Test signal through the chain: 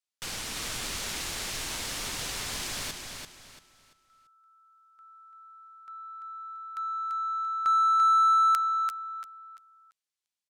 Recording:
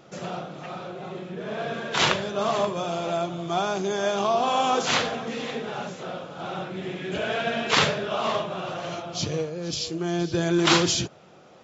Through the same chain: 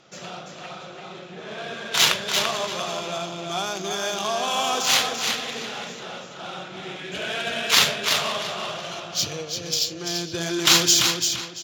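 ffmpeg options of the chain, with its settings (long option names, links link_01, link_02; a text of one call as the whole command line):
ffmpeg -i in.wav -af "aecho=1:1:340|680|1020|1360:0.562|0.174|0.054|0.0168,adynamicsmooth=sensitivity=3:basefreq=5300,crystalizer=i=8.5:c=0,volume=-7dB" out.wav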